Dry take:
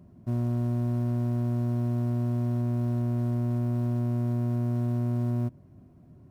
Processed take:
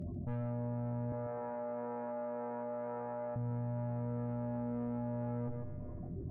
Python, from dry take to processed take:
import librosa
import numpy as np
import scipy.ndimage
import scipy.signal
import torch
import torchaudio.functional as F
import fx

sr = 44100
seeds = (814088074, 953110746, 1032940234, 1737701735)

y = fx.spec_gate(x, sr, threshold_db=-25, keep='strong')
y = fx.dereverb_blind(y, sr, rt60_s=1.5)
y = fx.rider(y, sr, range_db=10, speed_s=0.5)
y = fx.tube_stage(y, sr, drive_db=37.0, bias=0.25)
y = fx.chorus_voices(y, sr, voices=6, hz=0.38, base_ms=22, depth_ms=1.8, mix_pct=40)
y = fx.bandpass_edges(y, sr, low_hz=510.0, high_hz=2100.0, at=(1.12, 3.36))
y = y + 10.0 ** (-12.5 / 20.0) * np.pad(y, (int(145 * sr / 1000.0), 0))[:len(y)]
y = fx.rev_schroeder(y, sr, rt60_s=2.2, comb_ms=28, drr_db=17.0)
y = fx.env_flatten(y, sr, amount_pct=70)
y = y * librosa.db_to_amplitude(6.0)